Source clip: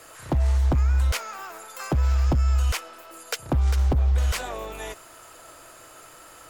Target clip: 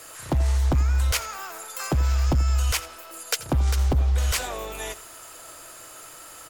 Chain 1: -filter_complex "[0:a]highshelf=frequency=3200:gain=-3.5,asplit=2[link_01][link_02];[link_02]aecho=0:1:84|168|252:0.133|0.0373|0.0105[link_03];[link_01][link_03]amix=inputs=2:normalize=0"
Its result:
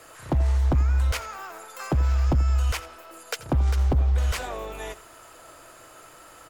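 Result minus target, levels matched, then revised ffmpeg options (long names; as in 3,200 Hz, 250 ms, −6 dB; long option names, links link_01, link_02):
8,000 Hz band −9.5 dB
-filter_complex "[0:a]highshelf=frequency=3200:gain=7.5,asplit=2[link_01][link_02];[link_02]aecho=0:1:84|168|252:0.133|0.0373|0.0105[link_03];[link_01][link_03]amix=inputs=2:normalize=0"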